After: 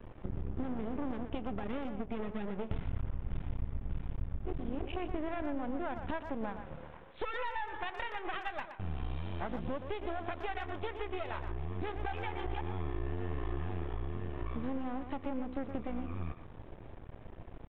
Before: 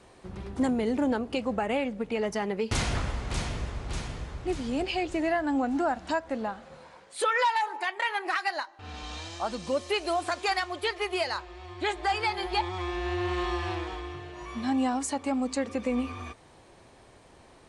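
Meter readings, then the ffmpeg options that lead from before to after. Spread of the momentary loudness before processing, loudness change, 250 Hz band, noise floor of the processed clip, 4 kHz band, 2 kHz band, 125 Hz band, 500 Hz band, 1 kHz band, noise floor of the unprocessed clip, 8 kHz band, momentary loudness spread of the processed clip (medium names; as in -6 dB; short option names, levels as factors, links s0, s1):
12 LU, -9.5 dB, -9.0 dB, -51 dBFS, -16.5 dB, -12.0 dB, -2.0 dB, -10.0 dB, -11.0 dB, -55 dBFS, under -35 dB, 5 LU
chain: -filter_complex "[0:a]aemphasis=mode=reproduction:type=riaa,acompressor=threshold=0.0251:ratio=6,aeval=exprs='max(val(0),0)':c=same,aresample=8000,aresample=44100,asplit=2[s0][s1];[s1]adelay=120,highpass=300,lowpass=3400,asoftclip=type=hard:threshold=0.0266,volume=0.398[s2];[s0][s2]amix=inputs=2:normalize=0,volume=1.12"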